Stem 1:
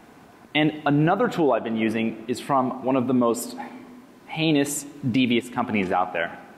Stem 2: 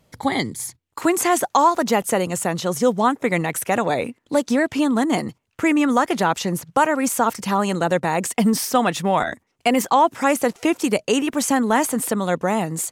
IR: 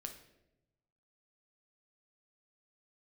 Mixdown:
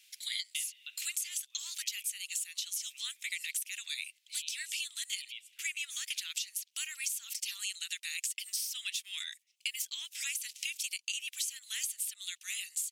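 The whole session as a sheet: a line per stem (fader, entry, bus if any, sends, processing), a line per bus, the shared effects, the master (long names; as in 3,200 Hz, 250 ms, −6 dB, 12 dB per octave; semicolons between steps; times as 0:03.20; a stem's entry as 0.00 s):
0.0 dB, 0.00 s, no send, automatic ducking −13 dB, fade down 1.90 s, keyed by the second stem
+2.5 dB, 0.00 s, no send, no processing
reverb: not used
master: Butterworth high-pass 2,600 Hz 36 dB per octave; downward compressor 10 to 1, threshold −33 dBFS, peak gain reduction 16 dB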